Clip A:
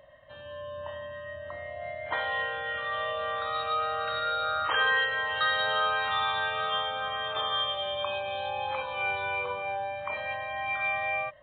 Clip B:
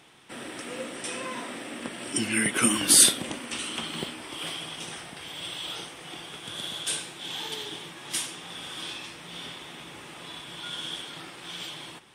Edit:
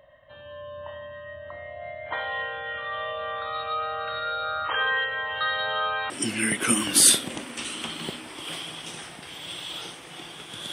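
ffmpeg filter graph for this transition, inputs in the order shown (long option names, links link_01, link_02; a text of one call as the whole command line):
ffmpeg -i cue0.wav -i cue1.wav -filter_complex "[0:a]apad=whole_dur=10.72,atrim=end=10.72,atrim=end=6.102[link_01];[1:a]atrim=start=2.038:end=6.66[link_02];[link_01][link_02]acrossfade=duration=0.004:curve1=hsin:curve2=hsin" out.wav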